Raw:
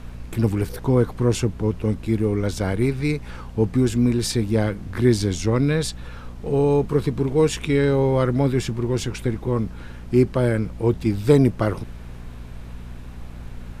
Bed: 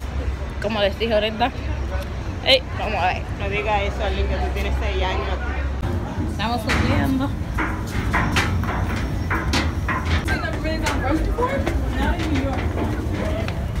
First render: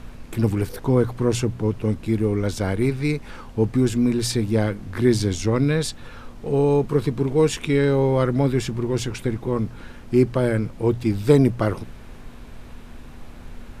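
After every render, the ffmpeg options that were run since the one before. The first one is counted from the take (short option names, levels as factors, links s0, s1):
-af "bandreject=f=60:t=h:w=4,bandreject=f=120:t=h:w=4,bandreject=f=180:t=h:w=4"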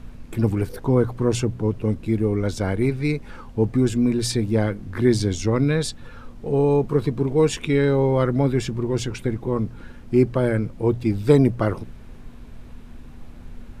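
-af "afftdn=nr=6:nf=-40"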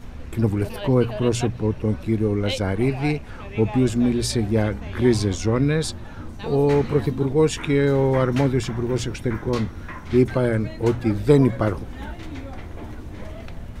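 -filter_complex "[1:a]volume=0.211[s0];[0:a][s0]amix=inputs=2:normalize=0"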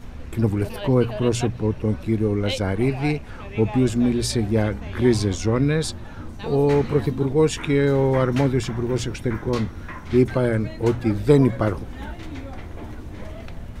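-af anull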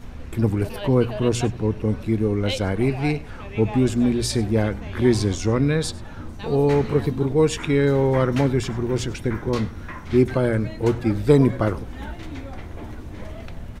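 -af "aecho=1:1:99:0.0891"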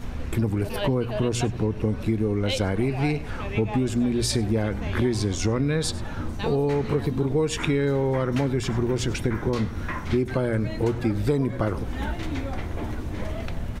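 -filter_complex "[0:a]asplit=2[s0][s1];[s1]alimiter=limit=0.188:level=0:latency=1,volume=0.708[s2];[s0][s2]amix=inputs=2:normalize=0,acompressor=threshold=0.1:ratio=6"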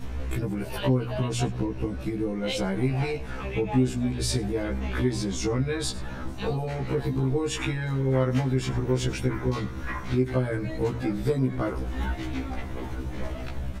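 -af "afftfilt=real='re*1.73*eq(mod(b,3),0)':imag='im*1.73*eq(mod(b,3),0)':win_size=2048:overlap=0.75"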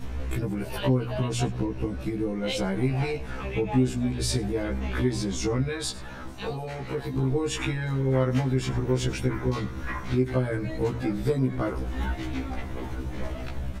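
-filter_complex "[0:a]asettb=1/sr,asplit=3[s0][s1][s2];[s0]atrim=end=5.694[s3];[s1]atrim=start=5.69:end=7.14,asetpts=PTS-STARTPTS,afade=t=in:d=0.004:c=qsin,afade=t=out:st=1.446:d=0.004:c=qsin,lowshelf=f=450:g=-6.5[s4];[s2]atrim=start=7.136[s5];[s3][s4]acrossfade=d=0.004:c1=hsin:c2=qsin[s6];[s6][s5]acrossfade=d=0.004:c1=qsin:c2=hsin"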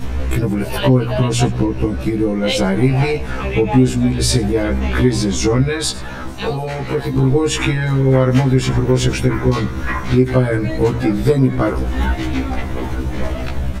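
-af "volume=3.76,alimiter=limit=0.794:level=0:latency=1"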